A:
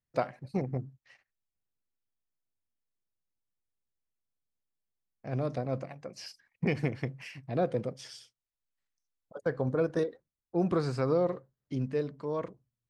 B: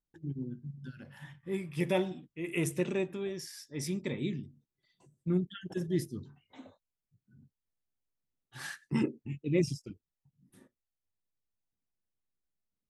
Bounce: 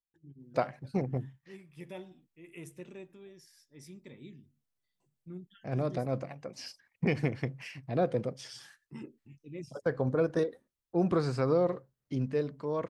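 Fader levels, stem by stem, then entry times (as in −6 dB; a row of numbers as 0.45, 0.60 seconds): +0.5, −15.0 decibels; 0.40, 0.00 seconds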